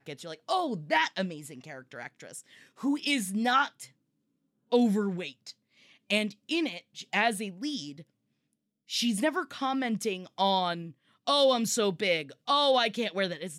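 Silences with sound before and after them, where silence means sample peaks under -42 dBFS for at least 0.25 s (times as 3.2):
2.4–2.8
3.86–4.72
5.51–6.1
8.01–8.9
10.9–11.27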